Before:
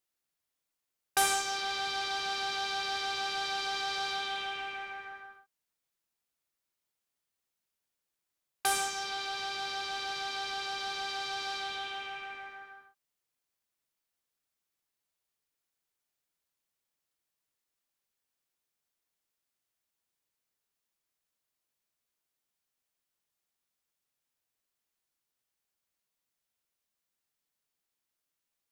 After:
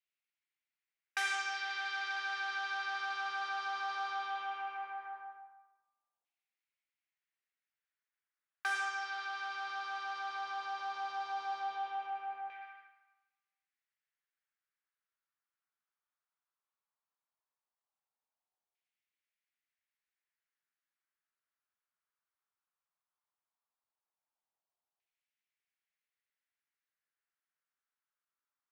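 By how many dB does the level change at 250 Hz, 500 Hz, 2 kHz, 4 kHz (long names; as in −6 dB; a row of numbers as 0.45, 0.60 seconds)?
below −15 dB, −15.0 dB, −1.0 dB, −11.0 dB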